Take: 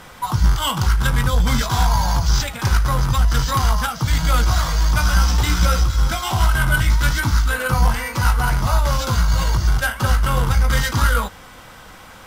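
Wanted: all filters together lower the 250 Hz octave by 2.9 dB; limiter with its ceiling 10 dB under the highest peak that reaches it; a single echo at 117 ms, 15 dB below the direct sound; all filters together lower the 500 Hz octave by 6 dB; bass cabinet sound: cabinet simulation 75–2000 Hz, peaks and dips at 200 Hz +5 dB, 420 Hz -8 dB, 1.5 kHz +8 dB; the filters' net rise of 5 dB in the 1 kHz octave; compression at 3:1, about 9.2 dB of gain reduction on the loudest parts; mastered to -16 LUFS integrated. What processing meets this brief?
peaking EQ 250 Hz -7 dB; peaking EQ 500 Hz -6 dB; peaking EQ 1 kHz +5.5 dB; compression 3:1, threshold -24 dBFS; peak limiter -21.5 dBFS; cabinet simulation 75–2000 Hz, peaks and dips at 200 Hz +5 dB, 420 Hz -8 dB, 1.5 kHz +8 dB; delay 117 ms -15 dB; trim +15 dB

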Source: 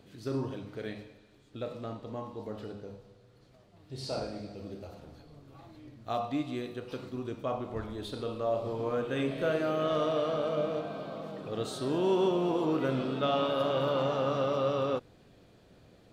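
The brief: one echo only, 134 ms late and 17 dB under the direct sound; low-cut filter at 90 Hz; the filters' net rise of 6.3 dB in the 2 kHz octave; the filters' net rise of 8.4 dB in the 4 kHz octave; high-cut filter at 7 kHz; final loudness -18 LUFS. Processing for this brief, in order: high-pass 90 Hz; low-pass 7 kHz; peaking EQ 2 kHz +6.5 dB; peaking EQ 4 kHz +8.5 dB; delay 134 ms -17 dB; trim +13 dB

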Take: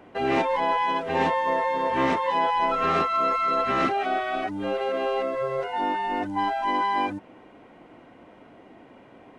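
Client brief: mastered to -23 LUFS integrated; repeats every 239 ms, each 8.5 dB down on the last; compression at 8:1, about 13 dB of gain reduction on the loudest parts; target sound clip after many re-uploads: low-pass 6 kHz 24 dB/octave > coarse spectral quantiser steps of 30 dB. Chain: compression 8:1, threshold -33 dBFS; low-pass 6 kHz 24 dB/octave; feedback delay 239 ms, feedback 38%, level -8.5 dB; coarse spectral quantiser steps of 30 dB; trim +13 dB

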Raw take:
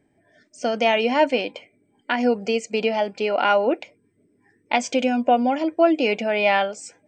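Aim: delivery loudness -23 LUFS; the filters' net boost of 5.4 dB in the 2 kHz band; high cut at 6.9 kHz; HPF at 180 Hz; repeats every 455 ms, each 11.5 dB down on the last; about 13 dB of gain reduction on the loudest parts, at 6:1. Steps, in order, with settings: high-pass 180 Hz; low-pass 6.9 kHz; peaking EQ 2 kHz +7 dB; compression 6:1, threshold -26 dBFS; feedback delay 455 ms, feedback 27%, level -11.5 dB; trim +7 dB

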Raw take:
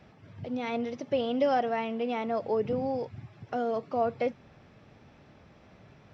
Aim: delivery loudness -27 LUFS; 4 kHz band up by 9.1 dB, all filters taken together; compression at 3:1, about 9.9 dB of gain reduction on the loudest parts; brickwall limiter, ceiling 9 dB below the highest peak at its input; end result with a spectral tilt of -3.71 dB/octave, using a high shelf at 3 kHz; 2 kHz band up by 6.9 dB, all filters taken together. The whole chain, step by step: peaking EQ 2 kHz +4 dB; treble shelf 3 kHz +8.5 dB; peaking EQ 4 kHz +4.5 dB; compression 3:1, threshold -34 dBFS; trim +11.5 dB; peak limiter -17 dBFS

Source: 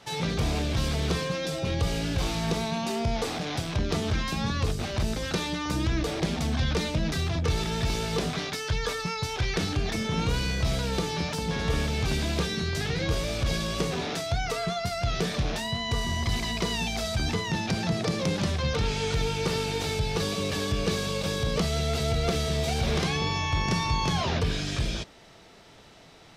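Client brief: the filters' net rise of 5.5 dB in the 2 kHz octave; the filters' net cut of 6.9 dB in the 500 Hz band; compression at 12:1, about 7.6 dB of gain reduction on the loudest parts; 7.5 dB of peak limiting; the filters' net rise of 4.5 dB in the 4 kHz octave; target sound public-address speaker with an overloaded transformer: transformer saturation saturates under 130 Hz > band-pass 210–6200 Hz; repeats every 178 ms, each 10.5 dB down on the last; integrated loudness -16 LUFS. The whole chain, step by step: peaking EQ 500 Hz -9 dB; peaking EQ 2 kHz +6 dB; peaking EQ 4 kHz +4.5 dB; compression 12:1, threshold -29 dBFS; peak limiter -24.5 dBFS; feedback delay 178 ms, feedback 30%, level -10.5 dB; transformer saturation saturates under 130 Hz; band-pass 210–6200 Hz; trim +19 dB

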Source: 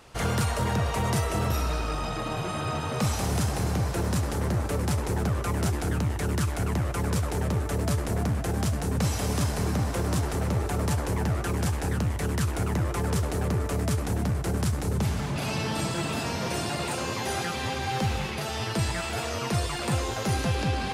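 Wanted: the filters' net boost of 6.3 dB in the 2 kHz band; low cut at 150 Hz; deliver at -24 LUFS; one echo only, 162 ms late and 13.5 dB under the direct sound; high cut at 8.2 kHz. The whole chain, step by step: high-pass 150 Hz; low-pass 8.2 kHz; peaking EQ 2 kHz +8 dB; delay 162 ms -13.5 dB; trim +4.5 dB

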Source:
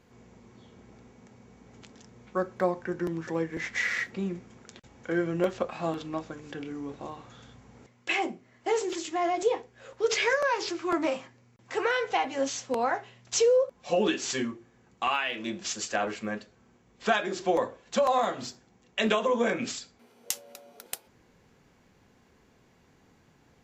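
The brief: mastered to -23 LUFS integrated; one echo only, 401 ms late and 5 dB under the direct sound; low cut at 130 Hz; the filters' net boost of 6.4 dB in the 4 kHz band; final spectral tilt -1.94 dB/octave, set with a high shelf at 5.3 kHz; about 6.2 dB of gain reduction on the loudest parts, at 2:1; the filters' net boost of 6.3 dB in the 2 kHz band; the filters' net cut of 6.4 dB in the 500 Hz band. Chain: high-pass 130 Hz; peaking EQ 500 Hz -8 dB; peaking EQ 2 kHz +6.5 dB; peaking EQ 4 kHz +4 dB; treble shelf 5.3 kHz +5.5 dB; compression 2:1, threshold -29 dBFS; delay 401 ms -5 dB; trim +8 dB

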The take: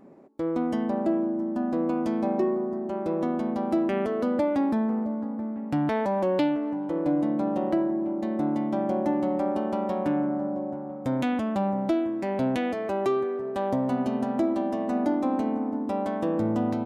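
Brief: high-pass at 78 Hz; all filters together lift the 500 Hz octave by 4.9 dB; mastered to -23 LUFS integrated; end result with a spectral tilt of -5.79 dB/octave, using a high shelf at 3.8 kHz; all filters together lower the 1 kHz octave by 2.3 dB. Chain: high-pass 78 Hz; peaking EQ 500 Hz +8.5 dB; peaking EQ 1 kHz -8 dB; treble shelf 3.8 kHz +4 dB; trim +1.5 dB

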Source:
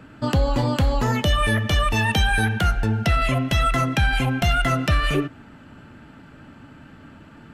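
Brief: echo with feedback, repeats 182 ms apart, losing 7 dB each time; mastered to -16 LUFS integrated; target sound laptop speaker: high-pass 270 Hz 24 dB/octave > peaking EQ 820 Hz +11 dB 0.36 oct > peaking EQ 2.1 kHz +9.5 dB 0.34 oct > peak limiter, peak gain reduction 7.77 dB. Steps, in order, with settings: high-pass 270 Hz 24 dB/octave; peaking EQ 820 Hz +11 dB 0.36 oct; peaking EQ 2.1 kHz +9.5 dB 0.34 oct; feedback delay 182 ms, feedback 45%, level -7 dB; trim +6 dB; peak limiter -7.5 dBFS

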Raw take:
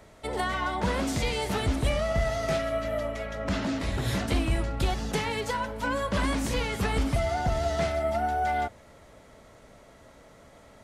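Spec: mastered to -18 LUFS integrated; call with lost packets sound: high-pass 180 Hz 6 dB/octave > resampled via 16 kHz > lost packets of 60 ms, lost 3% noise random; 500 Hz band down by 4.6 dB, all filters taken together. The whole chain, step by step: high-pass 180 Hz 6 dB/octave; peaking EQ 500 Hz -6 dB; resampled via 16 kHz; lost packets of 60 ms, lost 3% noise random; trim +14 dB

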